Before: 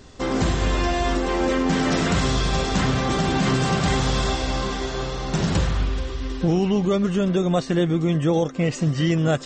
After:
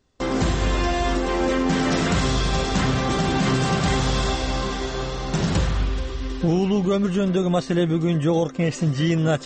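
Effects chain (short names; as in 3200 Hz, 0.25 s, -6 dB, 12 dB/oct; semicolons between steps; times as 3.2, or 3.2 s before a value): gate with hold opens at -25 dBFS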